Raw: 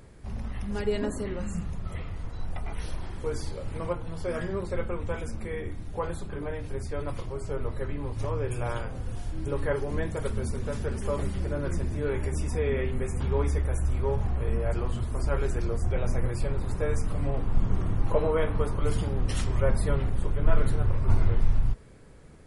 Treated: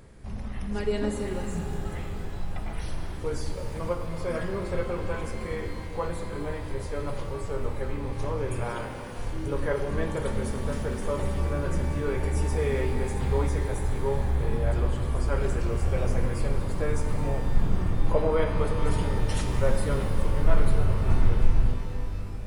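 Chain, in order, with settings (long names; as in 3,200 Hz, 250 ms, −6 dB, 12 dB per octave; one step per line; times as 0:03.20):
0:08.68–0:09.18: high-pass filter 210 Hz
reverb with rising layers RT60 3.7 s, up +12 semitones, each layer −8 dB, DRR 5 dB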